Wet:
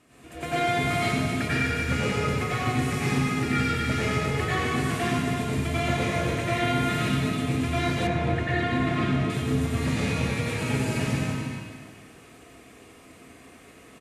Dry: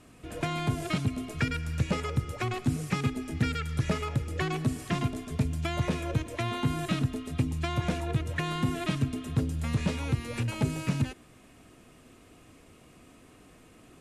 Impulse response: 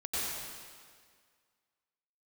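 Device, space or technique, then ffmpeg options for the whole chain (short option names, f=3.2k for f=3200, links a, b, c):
stadium PA: -filter_complex "[0:a]highpass=f=150:p=1,equalizer=f=2k:t=o:w=0.49:g=4,aecho=1:1:198.3|282.8:0.316|0.316[a];[1:a]atrim=start_sample=2205[b];[a][b]afir=irnorm=-1:irlink=0,asettb=1/sr,asplit=3[c][d][e];[c]atrim=end=8.074[f];[d]atrim=start=8.07:end=9.3,asetpts=PTS-STARTPTS,afade=t=in:d=0.004:c=qsin,afade=t=out:st=1.226:d=0.004:c=qsin,aemphasis=mode=reproduction:type=75fm[g];[e]atrim=start=9.296[h];[f][g]acrossfade=d=0.004:c1=hsin:c2=qsin[i];[i][h]acrossfade=d=0.004:c1=qsin:c2=hsin"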